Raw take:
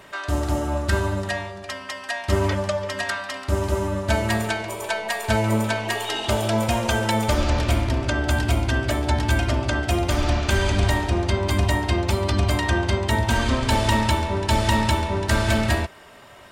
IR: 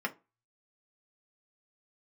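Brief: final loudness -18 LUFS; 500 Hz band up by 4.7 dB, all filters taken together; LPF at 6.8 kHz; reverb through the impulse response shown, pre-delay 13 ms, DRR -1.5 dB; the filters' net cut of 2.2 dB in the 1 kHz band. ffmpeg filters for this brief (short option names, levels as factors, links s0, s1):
-filter_complex "[0:a]lowpass=6800,equalizer=f=500:t=o:g=8.5,equalizer=f=1000:t=o:g=-6,asplit=2[s0][s1];[1:a]atrim=start_sample=2205,adelay=13[s2];[s1][s2]afir=irnorm=-1:irlink=0,volume=0.596[s3];[s0][s3]amix=inputs=2:normalize=0,volume=1.12"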